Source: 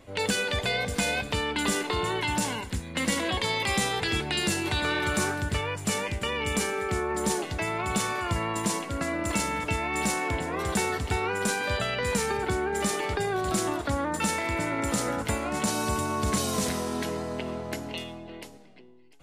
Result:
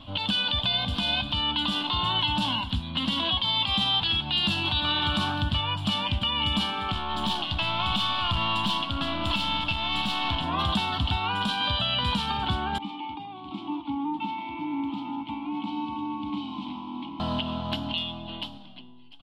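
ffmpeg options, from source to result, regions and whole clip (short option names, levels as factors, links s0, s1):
-filter_complex "[0:a]asettb=1/sr,asplit=3[s0][s1][s2];[s0]atrim=end=6.924[s3];[s1]atrim=start=6.92:end=10.44,asetpts=PTS-STARTPTS,afade=t=in:d=0.004:c=qsin,afade=t=out:st=3.516:d=0.004:c=qsin,equalizer=f=3300:w=0.43:g=4,aeval=exprs='(tanh(22.4*val(0)+0.45)-tanh(0.45))/22.4':c=same[s4];[s2]atrim=start=10.436[s5];[s3][s4]acrossfade=d=0.004:c1=hsin:c2=qsin[s6];[s6][s5]acrossfade=d=0.004:c1=qsin:c2=hsin,asettb=1/sr,asplit=3[s7][s8][s9];[s7]atrim=end=12.784[s10];[s8]atrim=start=12.78:end=17.2,asetpts=PTS-STARTPTS,afade=t=in:d=0.004:c=qsin,afade=t=out:st=4.416:d=0.004:c=qsin,asplit=3[s11][s12][s13];[s11]bandpass=f=300:t=q:w=8,volume=1[s14];[s12]bandpass=f=870:t=q:w=8,volume=0.501[s15];[s13]bandpass=f=2240:t=q:w=8,volume=0.355[s16];[s14][s15][s16]amix=inputs=3:normalize=0,aecho=1:1:847:0.237,atrim=end_sample=194922[s17];[s9]atrim=start=17.196[s18];[s10][s17]acrossfade=d=0.004:c1=hsin:c2=qsin[s19];[s19][s18]acrossfade=d=0.004:c1=qsin:c2=hsin,firequalizer=gain_entry='entry(280,0);entry(420,-24);entry(620,-5);entry(1000,3);entry(2000,-15);entry(3100,13);entry(6400,-21);entry(14000,-18)':delay=0.05:min_phase=1,alimiter=limit=0.0668:level=0:latency=1:release=388,volume=2.37"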